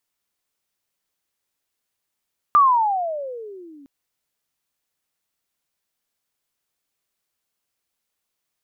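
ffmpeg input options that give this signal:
ffmpeg -f lavfi -i "aevalsrc='pow(10,(-9-33.5*t/1.31)/20)*sin(2*PI*1210*1.31/(-26*log(2)/12)*(exp(-26*log(2)/12*t/1.31)-1))':duration=1.31:sample_rate=44100" out.wav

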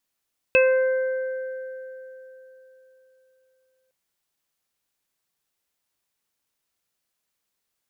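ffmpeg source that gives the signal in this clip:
ffmpeg -f lavfi -i "aevalsrc='0.2*pow(10,-3*t/3.64)*sin(2*PI*520*t)+0.0251*pow(10,-3*t/1.26)*sin(2*PI*1040*t)+0.0562*pow(10,-3*t/3.37)*sin(2*PI*1560*t)+0.0211*pow(10,-3*t/1.92)*sin(2*PI*2080*t)+0.2*pow(10,-3*t/0.34)*sin(2*PI*2600*t)':duration=3.36:sample_rate=44100" out.wav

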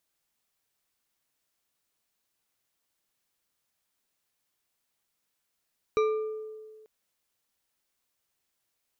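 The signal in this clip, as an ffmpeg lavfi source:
ffmpeg -f lavfi -i "aevalsrc='0.0944*pow(10,-3*t/1.73)*sin(2*PI*434*t)+0.0422*pow(10,-3*t/0.851)*sin(2*PI*1196.5*t)+0.0188*pow(10,-3*t/0.531)*sin(2*PI*2345.3*t)+0.00841*pow(10,-3*t/0.374)*sin(2*PI*3876.9*t)+0.00376*pow(10,-3*t/0.282)*sin(2*PI*5789.6*t)':duration=0.89:sample_rate=44100" out.wav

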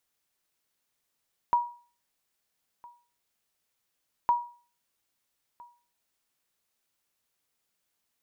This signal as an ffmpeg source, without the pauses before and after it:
ffmpeg -f lavfi -i "aevalsrc='0.15*(sin(2*PI*959*mod(t,2.76))*exp(-6.91*mod(t,2.76)/0.4)+0.0562*sin(2*PI*959*max(mod(t,2.76)-1.31,0))*exp(-6.91*max(mod(t,2.76)-1.31,0)/0.4))':duration=5.52:sample_rate=44100" out.wav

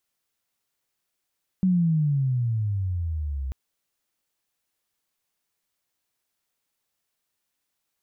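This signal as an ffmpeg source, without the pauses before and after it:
ffmpeg -f lavfi -i "aevalsrc='pow(10,(-17-10*t/1.89)/20)*sin(2*PI*190*1.89/log(64/190)*(exp(log(64/190)*t/1.89)-1))':duration=1.89:sample_rate=44100" out.wav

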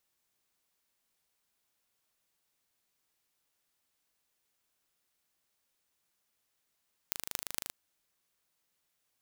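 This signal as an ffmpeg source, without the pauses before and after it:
ffmpeg -f lavfi -i "aevalsrc='0.596*eq(mod(n,1703),0)*(0.5+0.5*eq(mod(n,10218),0))':duration=0.58:sample_rate=44100" out.wav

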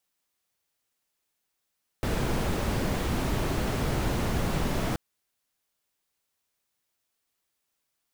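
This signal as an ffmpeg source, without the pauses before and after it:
ffmpeg -f lavfi -i "anoisesrc=color=brown:amplitude=0.209:duration=2.93:sample_rate=44100:seed=1" out.wav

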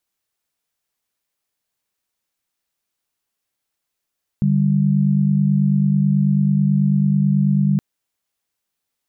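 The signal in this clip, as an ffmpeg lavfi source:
ffmpeg -f lavfi -i "aevalsrc='0.158*(sin(2*PI*146.83*t)+sin(2*PI*196*t))':duration=3.37:sample_rate=44100" out.wav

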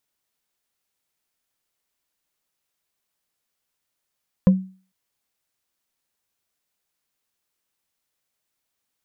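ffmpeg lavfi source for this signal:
ffmpeg -f lavfi -i "aevalsrc='0.447*pow(10,-3*t/0.38)*sin(2*PI*188*t)+0.141*pow(10,-3*t/0.113)*sin(2*PI*518.3*t)+0.0447*pow(10,-3*t/0.05)*sin(2*PI*1016*t)+0.0141*pow(10,-3*t/0.027)*sin(2*PI*1679.4*t)+0.00447*pow(10,-3*t/0.017)*sin(2*PI*2507.9*t)':duration=0.45:sample_rate=44100" out.wav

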